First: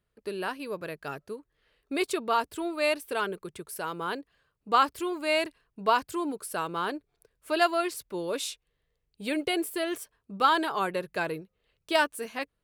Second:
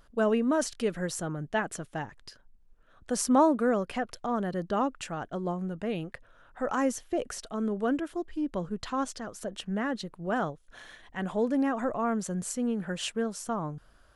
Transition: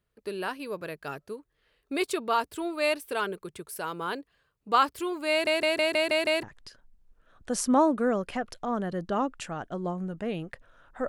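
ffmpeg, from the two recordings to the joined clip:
-filter_complex "[0:a]apad=whole_dur=11.08,atrim=end=11.08,asplit=7[a][b][c][d][e][f][g];[a]atrim=end=5.472[h];[b]atrim=start=5.308:end=5.472[i];[c]atrim=start=5.308:end=5.472[j];[d]atrim=start=5.308:end=5.472[k];[e]atrim=start=5.308:end=5.472[l];[f]atrim=start=5.308:end=5.472[m];[g]atrim=start=5.308:end=5.472[n];[1:a]atrim=start=2.038:end=6.69[o];[h][i]acrossfade=d=0.004:c1=hsin:c2=hsin[p];[p][j]acrossfade=d=0.004:c1=hsin:c2=hsin[q];[q][k]acrossfade=d=0.004:c1=hsin:c2=hsin[r];[r][l]acrossfade=d=0.004:c1=hsin:c2=hsin[s];[s][m]acrossfade=d=0.004:c1=hsin:c2=hsin[t];[t][n]acrossfade=d=0.004:c1=hsin:c2=hsin[u];[u][o]acrossfade=d=0.004:c1=hsin:c2=hsin"

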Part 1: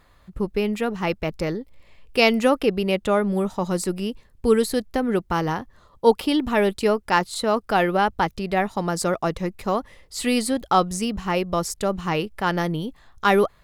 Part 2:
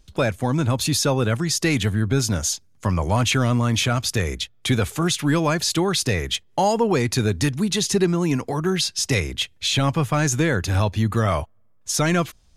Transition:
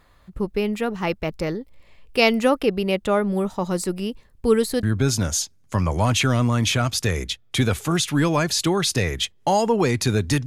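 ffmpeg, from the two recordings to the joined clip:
-filter_complex "[0:a]apad=whole_dur=10.46,atrim=end=10.46,atrim=end=4.832[a];[1:a]atrim=start=1.938:end=7.57[b];[a][b]acrossfade=d=0.004:c1=hsin:c2=hsin"

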